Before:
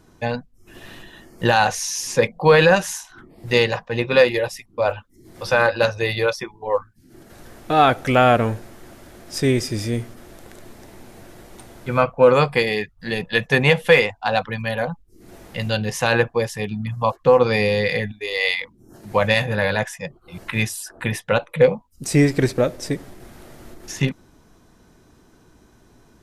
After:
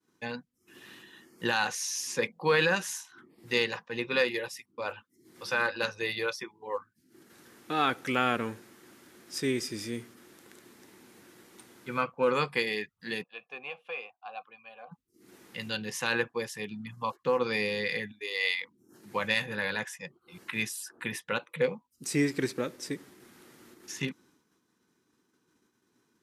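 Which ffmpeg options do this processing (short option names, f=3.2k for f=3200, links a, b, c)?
-filter_complex "[0:a]asplit=3[a][b][c];[a]afade=t=out:st=13.22:d=0.02[d];[b]asplit=3[e][f][g];[e]bandpass=f=730:t=q:w=8,volume=0dB[h];[f]bandpass=f=1.09k:t=q:w=8,volume=-6dB[i];[g]bandpass=f=2.44k:t=q:w=8,volume=-9dB[j];[h][i][j]amix=inputs=3:normalize=0,afade=t=in:st=13.22:d=0.02,afade=t=out:st=14.91:d=0.02[k];[c]afade=t=in:st=14.91:d=0.02[l];[d][k][l]amix=inputs=3:normalize=0,agate=range=-33dB:threshold=-46dB:ratio=3:detection=peak,highpass=230,equalizer=f=650:t=o:w=0.62:g=-14,volume=-7.5dB"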